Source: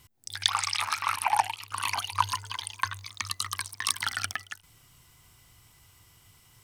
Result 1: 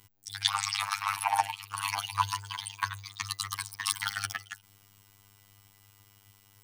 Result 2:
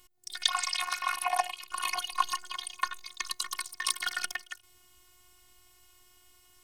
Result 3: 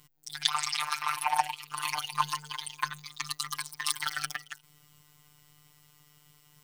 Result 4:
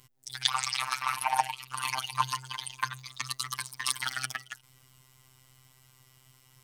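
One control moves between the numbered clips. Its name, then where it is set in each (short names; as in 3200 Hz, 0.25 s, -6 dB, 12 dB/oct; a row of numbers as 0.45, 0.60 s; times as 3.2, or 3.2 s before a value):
robotiser, frequency: 100, 360, 150, 130 Hz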